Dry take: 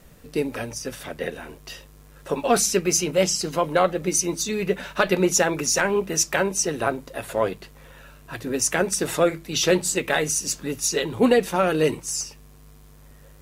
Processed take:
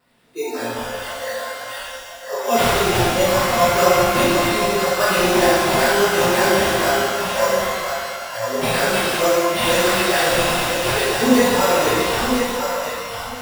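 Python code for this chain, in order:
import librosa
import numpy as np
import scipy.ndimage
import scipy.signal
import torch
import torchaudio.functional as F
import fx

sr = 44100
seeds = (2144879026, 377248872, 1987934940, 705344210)

y = x + 0.5 * 10.0 ** (-31.5 / 20.0) * np.sign(x)
y = scipy.signal.sosfilt(scipy.signal.butter(2, 220.0, 'highpass', fs=sr, output='sos'), y)
y = fx.echo_feedback(y, sr, ms=1007, feedback_pct=28, wet_db=-6)
y = fx.sample_hold(y, sr, seeds[0], rate_hz=6400.0, jitter_pct=0)
y = fx.noise_reduce_blind(y, sr, reduce_db=23)
y = fx.rev_shimmer(y, sr, seeds[1], rt60_s=1.7, semitones=12, shimmer_db=-8, drr_db=-11.5)
y = F.gain(torch.from_numpy(y), -7.5).numpy()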